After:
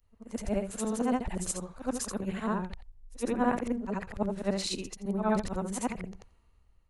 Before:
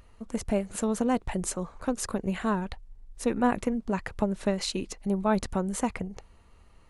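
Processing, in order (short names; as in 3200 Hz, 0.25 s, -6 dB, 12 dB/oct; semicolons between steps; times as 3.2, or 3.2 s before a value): short-time reversal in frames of 0.176 s; three-band expander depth 40%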